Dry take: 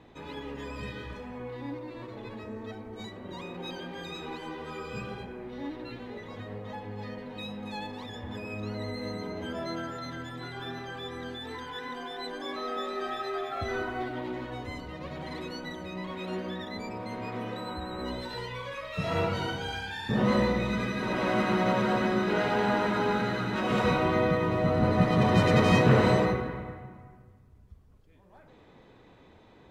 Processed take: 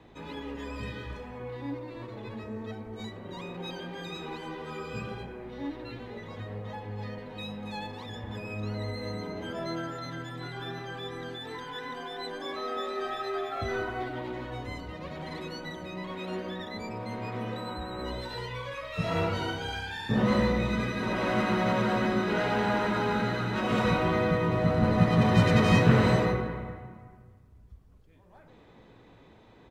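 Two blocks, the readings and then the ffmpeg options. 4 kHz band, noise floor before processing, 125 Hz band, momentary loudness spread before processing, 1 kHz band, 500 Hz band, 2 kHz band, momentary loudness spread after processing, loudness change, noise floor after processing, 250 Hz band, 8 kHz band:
0.0 dB, -56 dBFS, +1.5 dB, 16 LU, -0.5 dB, -1.0 dB, 0.0 dB, 16 LU, 0.0 dB, -55 dBFS, +0.5 dB, 0.0 dB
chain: -filter_complex "[0:a]acrossover=split=300|1000[s0][s1][s2];[s0]asplit=2[s3][s4];[s4]adelay=18,volume=0.708[s5];[s3][s5]amix=inputs=2:normalize=0[s6];[s1]volume=25.1,asoftclip=hard,volume=0.0398[s7];[s6][s7][s2]amix=inputs=3:normalize=0"

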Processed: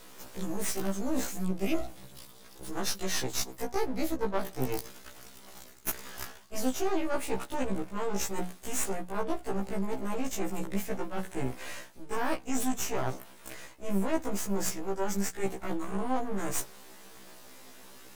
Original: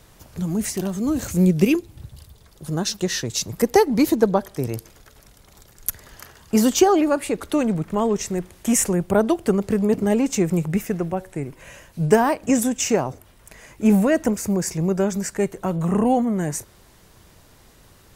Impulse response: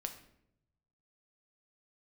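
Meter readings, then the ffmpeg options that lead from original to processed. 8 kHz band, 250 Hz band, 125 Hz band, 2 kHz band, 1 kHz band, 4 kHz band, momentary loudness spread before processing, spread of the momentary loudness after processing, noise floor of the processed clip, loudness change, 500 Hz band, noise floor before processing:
-9.0 dB, -14.5 dB, -15.0 dB, -8.0 dB, -10.0 dB, -8.5 dB, 12 LU, 18 LU, -51 dBFS, -13.0 dB, -13.0 dB, -52 dBFS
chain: -af "highpass=f=190:w=0.5412,highpass=f=190:w=1.3066,bandreject=f=60:t=h:w=6,bandreject=f=120:t=h:w=6,bandreject=f=180:t=h:w=6,bandreject=f=240:t=h:w=6,bandreject=f=300:t=h:w=6,bandreject=f=360:t=h:w=6,bandreject=f=420:t=h:w=6,bandreject=f=480:t=h:w=6,areverse,acompressor=threshold=0.0282:ratio=8,areverse,aeval=exprs='max(val(0),0)':c=same,afftfilt=real='re*1.73*eq(mod(b,3),0)':imag='im*1.73*eq(mod(b,3),0)':win_size=2048:overlap=0.75,volume=2.66"

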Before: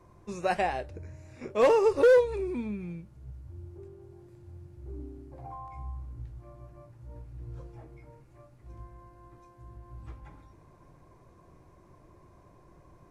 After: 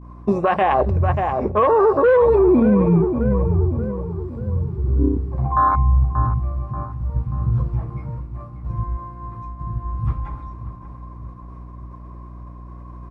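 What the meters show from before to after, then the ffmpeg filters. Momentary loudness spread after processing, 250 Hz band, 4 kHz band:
24 LU, +19.0 dB, no reading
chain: -filter_complex "[0:a]aemphasis=mode=reproduction:type=50fm,bandreject=f=6600:w=6.7,agate=range=0.0224:threshold=0.00282:ratio=3:detection=peak,highpass=f=58:p=1,bandreject=f=60:t=h:w=6,bandreject=f=120:t=h:w=6,bandreject=f=180:t=h:w=6,bandreject=f=240:t=h:w=6,bandreject=f=300:t=h:w=6,afwtdn=0.02,equalizer=f=1100:t=o:w=0.37:g=13,areverse,acompressor=threshold=0.02:ratio=5,areverse,aeval=exprs='val(0)+0.000562*(sin(2*PI*60*n/s)+sin(2*PI*2*60*n/s)/2+sin(2*PI*3*60*n/s)/3+sin(2*PI*4*60*n/s)/4+sin(2*PI*5*60*n/s)/5)':c=same,asplit=2[s0][s1];[s1]adelay=584,lowpass=f=1800:p=1,volume=0.251,asplit=2[s2][s3];[s3]adelay=584,lowpass=f=1800:p=1,volume=0.5,asplit=2[s4][s5];[s5]adelay=584,lowpass=f=1800:p=1,volume=0.5,asplit=2[s6][s7];[s7]adelay=584,lowpass=f=1800:p=1,volume=0.5,asplit=2[s8][s9];[s9]adelay=584,lowpass=f=1800:p=1,volume=0.5[s10];[s2][s4][s6][s8][s10]amix=inputs=5:normalize=0[s11];[s0][s11]amix=inputs=2:normalize=0,alimiter=level_in=50.1:limit=0.891:release=50:level=0:latency=1,volume=0.447"

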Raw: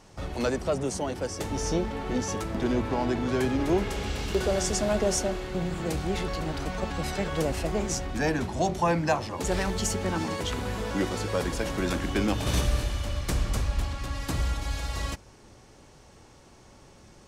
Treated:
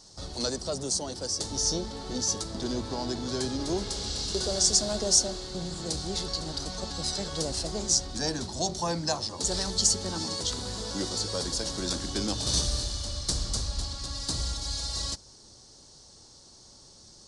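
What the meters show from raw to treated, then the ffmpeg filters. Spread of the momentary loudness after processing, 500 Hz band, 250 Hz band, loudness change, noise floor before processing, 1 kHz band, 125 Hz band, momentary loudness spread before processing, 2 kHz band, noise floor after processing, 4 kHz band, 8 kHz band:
9 LU, -5.5 dB, -5.5 dB, 0.0 dB, -53 dBFS, -6.5 dB, -5.5 dB, 6 LU, -9.5 dB, -53 dBFS, +8.0 dB, +8.0 dB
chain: -af "highshelf=f=3300:t=q:w=3:g=10.5,aresample=22050,aresample=44100,volume=0.531"

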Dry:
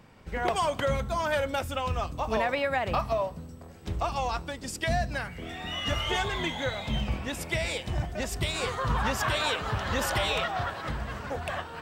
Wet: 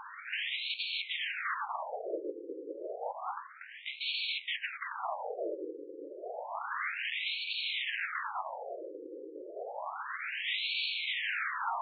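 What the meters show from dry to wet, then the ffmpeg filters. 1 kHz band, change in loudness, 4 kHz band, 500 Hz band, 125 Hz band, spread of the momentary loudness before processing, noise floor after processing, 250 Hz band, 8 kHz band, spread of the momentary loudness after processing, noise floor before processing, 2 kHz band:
-8.0 dB, -6.0 dB, -2.0 dB, -10.5 dB, under -40 dB, 8 LU, -48 dBFS, -13.5 dB, under -40 dB, 11 LU, -45 dBFS, -3.0 dB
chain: -af "bass=f=250:g=4,treble=f=4000:g=-7,asoftclip=type=hard:threshold=0.0596,acontrast=71,aeval=exprs='0.133*sin(PI/2*6.31*val(0)/0.133)':c=same,afftfilt=real='re*between(b*sr/1024,370*pow(3200/370,0.5+0.5*sin(2*PI*0.3*pts/sr))/1.41,370*pow(3200/370,0.5+0.5*sin(2*PI*0.3*pts/sr))*1.41)':imag='im*between(b*sr/1024,370*pow(3200/370,0.5+0.5*sin(2*PI*0.3*pts/sr))/1.41,370*pow(3200/370,0.5+0.5*sin(2*PI*0.3*pts/sr))*1.41)':win_size=1024:overlap=0.75,volume=0.398"

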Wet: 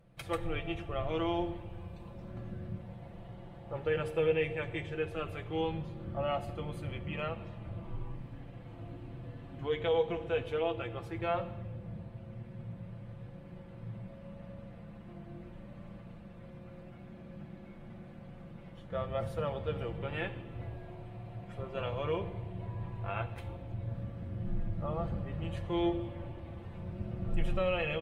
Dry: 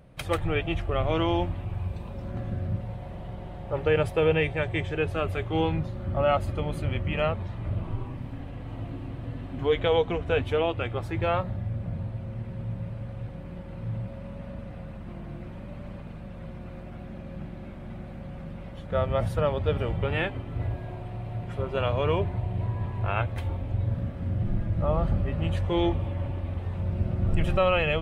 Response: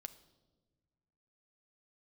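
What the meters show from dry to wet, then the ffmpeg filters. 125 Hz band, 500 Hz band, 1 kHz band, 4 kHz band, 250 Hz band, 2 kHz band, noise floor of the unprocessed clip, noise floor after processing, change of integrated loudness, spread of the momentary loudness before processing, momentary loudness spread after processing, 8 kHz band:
-11.0 dB, -7.5 dB, -8.5 dB, -8.5 dB, -7.5 dB, -8.5 dB, -40 dBFS, -50 dBFS, -8.5 dB, 15 LU, 17 LU, no reading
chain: -filter_complex "[0:a]aecho=1:1:5.9:0.44[s0];[1:a]atrim=start_sample=2205,asetrate=35280,aresample=44100[s1];[s0][s1]afir=irnorm=-1:irlink=0,volume=0.531"

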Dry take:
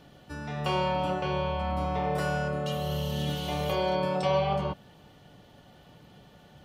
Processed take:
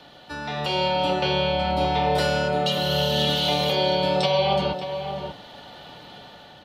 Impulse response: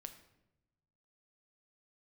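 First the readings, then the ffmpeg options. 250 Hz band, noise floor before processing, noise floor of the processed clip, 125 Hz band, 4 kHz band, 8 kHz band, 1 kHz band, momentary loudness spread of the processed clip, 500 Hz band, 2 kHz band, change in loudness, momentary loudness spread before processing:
+4.5 dB, -55 dBFS, -47 dBFS, +3.0 dB, +14.0 dB, +7.5 dB, +6.5 dB, 21 LU, +7.0 dB, +7.5 dB, +7.0 dB, 7 LU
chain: -filter_complex "[0:a]bass=f=250:g=-11,treble=f=4000:g=-7,acrossover=split=120|580|2400[s0][s1][s2][s3];[s2]acompressor=threshold=0.00631:ratio=6[s4];[s0][s1][s4][s3]amix=inputs=4:normalize=0,equalizer=f=400:t=o:w=0.67:g=-3,equalizer=f=1000:t=o:w=0.67:g=5,equalizer=f=4000:t=o:w=0.67:g=11,alimiter=limit=0.0631:level=0:latency=1:release=308,bandreject=f=1100:w=9.9,dynaudnorm=f=240:g=5:m=1.78,asplit=2[s5][s6];[s6]adelay=583.1,volume=0.398,highshelf=f=4000:g=-13.1[s7];[s5][s7]amix=inputs=2:normalize=0,volume=2.37"

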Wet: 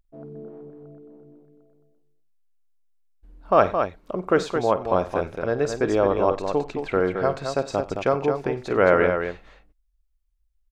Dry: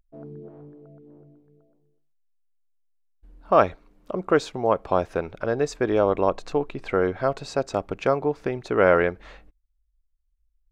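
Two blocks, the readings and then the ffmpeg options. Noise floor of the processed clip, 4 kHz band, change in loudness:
-68 dBFS, +1.0 dB, +1.0 dB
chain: -af "aecho=1:1:50|93|218:0.188|0.106|0.473"

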